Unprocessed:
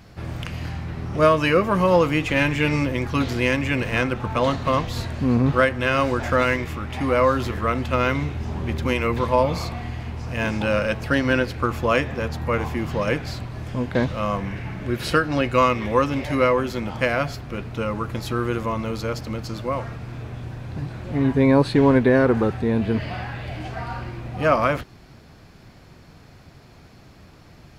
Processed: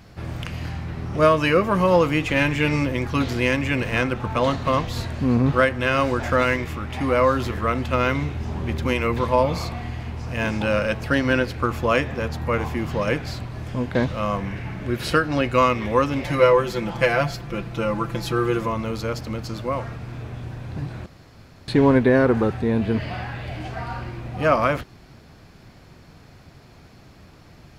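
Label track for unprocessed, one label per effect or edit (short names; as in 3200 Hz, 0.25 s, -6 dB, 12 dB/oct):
16.240000	18.680000	comb 5.9 ms, depth 75%
21.060000	21.680000	room tone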